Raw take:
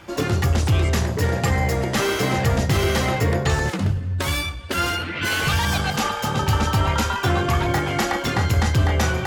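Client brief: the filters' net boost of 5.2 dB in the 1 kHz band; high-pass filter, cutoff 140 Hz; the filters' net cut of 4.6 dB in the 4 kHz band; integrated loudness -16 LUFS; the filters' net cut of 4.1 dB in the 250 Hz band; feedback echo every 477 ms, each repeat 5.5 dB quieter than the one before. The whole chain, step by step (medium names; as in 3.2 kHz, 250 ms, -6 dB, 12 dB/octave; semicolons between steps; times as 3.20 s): high-pass 140 Hz; peaking EQ 250 Hz -5.5 dB; peaking EQ 1 kHz +7.5 dB; peaking EQ 4 kHz -7 dB; feedback delay 477 ms, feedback 53%, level -5.5 dB; trim +4.5 dB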